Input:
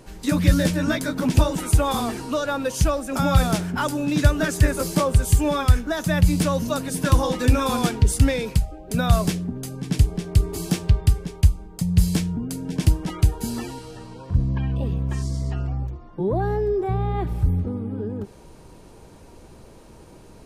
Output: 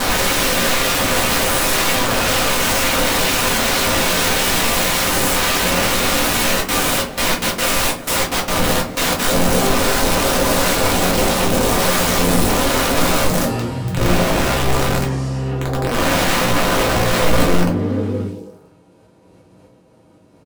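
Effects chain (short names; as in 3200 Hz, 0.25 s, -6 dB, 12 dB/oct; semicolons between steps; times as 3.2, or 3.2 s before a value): spectral swells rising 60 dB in 2.74 s; expander -33 dBFS; HPF 78 Hz 24 dB/oct; tone controls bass +1 dB, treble -5 dB; comb 6.3 ms, depth 33%; dynamic EQ 280 Hz, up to +4 dB, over -26 dBFS, Q 0.74; wrapped overs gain 15.5 dB; 6.57–9.18 step gate "xx.x.xxxx.." 184 bpm -24 dB; delay with a stepping band-pass 0.109 s, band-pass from 230 Hz, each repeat 0.7 oct, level -7 dB; reverb RT60 0.30 s, pre-delay 4 ms, DRR -2 dB; gain -1 dB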